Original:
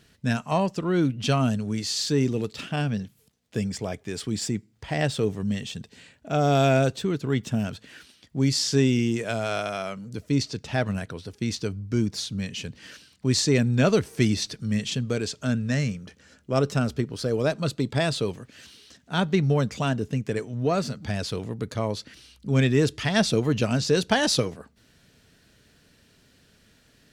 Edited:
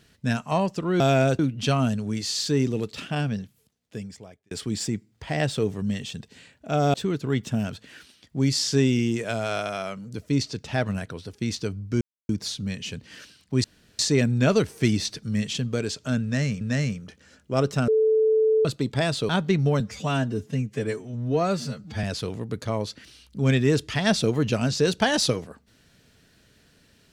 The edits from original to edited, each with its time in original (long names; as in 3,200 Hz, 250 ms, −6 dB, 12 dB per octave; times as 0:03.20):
0:02.85–0:04.12: fade out
0:06.55–0:06.94: move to 0:01.00
0:12.01: splice in silence 0.28 s
0:13.36: splice in room tone 0.35 s
0:15.60–0:15.98: repeat, 2 plays
0:16.87–0:17.64: beep over 438 Hz −16.5 dBFS
0:18.28–0:19.13: remove
0:19.64–0:21.13: time-stretch 1.5×